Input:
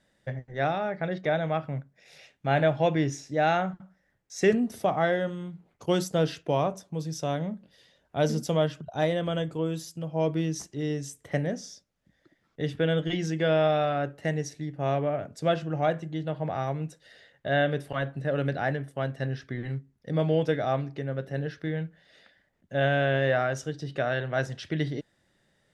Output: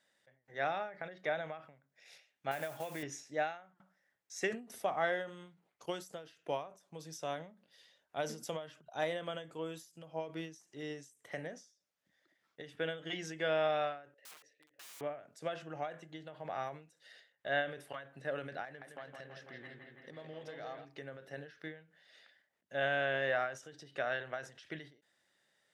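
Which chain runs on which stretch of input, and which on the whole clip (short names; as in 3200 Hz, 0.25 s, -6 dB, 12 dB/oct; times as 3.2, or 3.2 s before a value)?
2.51–3.03 compressor 5:1, threshold -25 dBFS + modulation noise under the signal 20 dB
14.14–15.01 vowel filter e + notches 60/120/180/240 Hz + wrapped overs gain 44 dB
18.65–20.85 self-modulated delay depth 0.068 ms + compressor 4:1, threshold -35 dBFS + analogue delay 0.165 s, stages 4096, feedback 69%, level -5.5 dB
whole clip: HPF 960 Hz 6 dB/oct; dynamic EQ 4500 Hz, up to -5 dB, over -54 dBFS, Q 1.4; ending taper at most 130 dB/s; gain -3 dB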